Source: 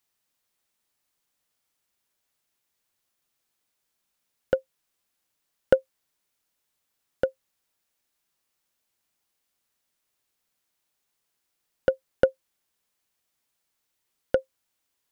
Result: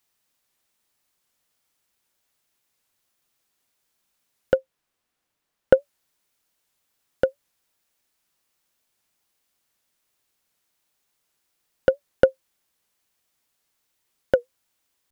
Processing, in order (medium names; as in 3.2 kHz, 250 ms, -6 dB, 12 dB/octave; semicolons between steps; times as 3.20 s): 4.57–5.77 s: treble shelf 3.5 kHz -8.5 dB; warped record 78 rpm, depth 160 cents; trim +4 dB